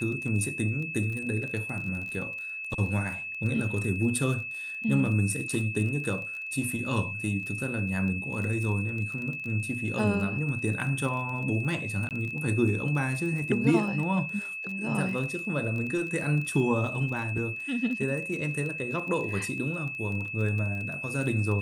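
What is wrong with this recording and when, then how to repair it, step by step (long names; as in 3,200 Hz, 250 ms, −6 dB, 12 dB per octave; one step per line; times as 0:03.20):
surface crackle 21 per second −34 dBFS
whistle 2,600 Hz −34 dBFS
0:12.09–0:12.11: drop-out 18 ms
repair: click removal
notch filter 2,600 Hz, Q 30
repair the gap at 0:12.09, 18 ms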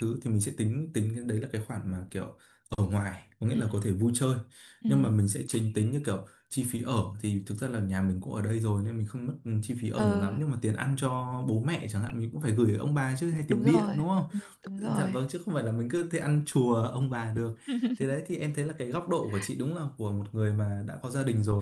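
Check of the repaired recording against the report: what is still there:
none of them is left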